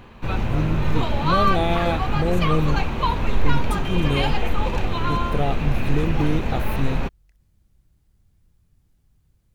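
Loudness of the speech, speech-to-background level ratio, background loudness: -26.5 LUFS, -1.5 dB, -25.0 LUFS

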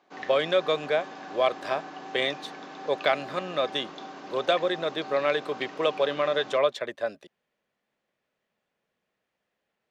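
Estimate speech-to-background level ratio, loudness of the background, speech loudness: 13.5 dB, -41.0 LUFS, -27.5 LUFS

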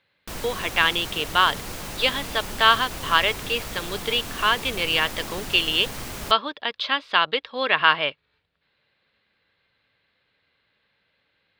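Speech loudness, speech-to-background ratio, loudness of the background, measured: -22.5 LUFS, 11.0 dB, -33.5 LUFS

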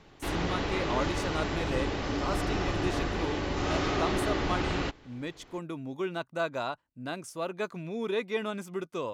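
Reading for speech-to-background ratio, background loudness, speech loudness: -4.5 dB, -31.5 LUFS, -36.0 LUFS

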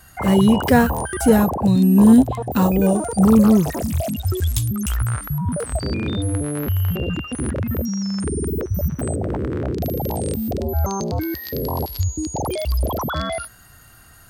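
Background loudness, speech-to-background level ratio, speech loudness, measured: -24.0 LUFS, 8.0 dB, -16.0 LUFS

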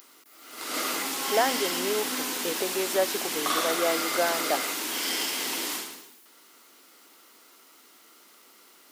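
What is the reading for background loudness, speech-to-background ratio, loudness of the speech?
-28.0 LUFS, -2.0 dB, -30.0 LUFS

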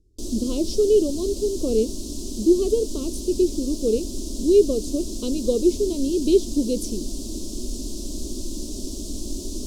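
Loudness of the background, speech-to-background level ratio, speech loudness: -32.5 LUFS, 9.5 dB, -23.0 LUFS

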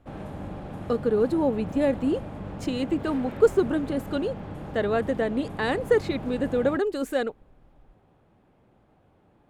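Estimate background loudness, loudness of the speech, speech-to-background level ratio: -37.5 LUFS, -26.0 LUFS, 11.5 dB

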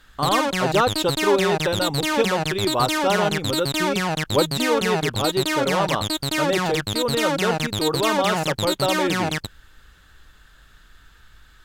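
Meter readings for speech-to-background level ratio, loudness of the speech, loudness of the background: -1.0 dB, -24.5 LUFS, -23.5 LUFS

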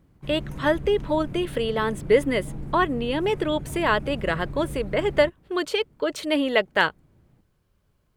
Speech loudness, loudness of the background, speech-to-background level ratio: -24.5 LUFS, -37.0 LUFS, 12.5 dB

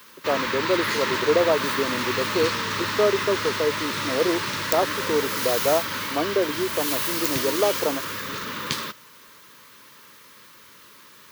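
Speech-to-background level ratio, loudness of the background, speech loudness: 0.0 dB, -26.0 LUFS, -26.0 LUFS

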